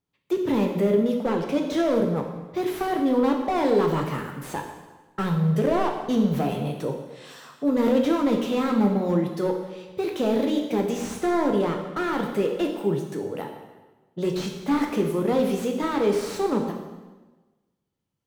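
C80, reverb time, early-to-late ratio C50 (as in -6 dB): 7.5 dB, 1.2 s, 5.5 dB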